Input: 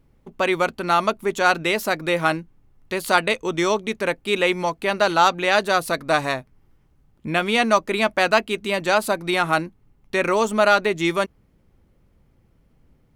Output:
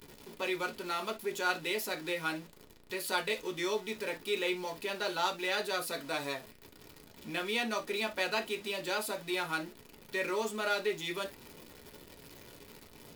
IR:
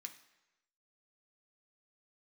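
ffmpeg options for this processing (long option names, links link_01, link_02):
-filter_complex "[0:a]aeval=exprs='val(0)+0.5*0.0376*sgn(val(0))':channel_layout=same[link_01];[1:a]atrim=start_sample=2205,atrim=end_sample=6615,asetrate=88200,aresample=44100[link_02];[link_01][link_02]afir=irnorm=-1:irlink=0"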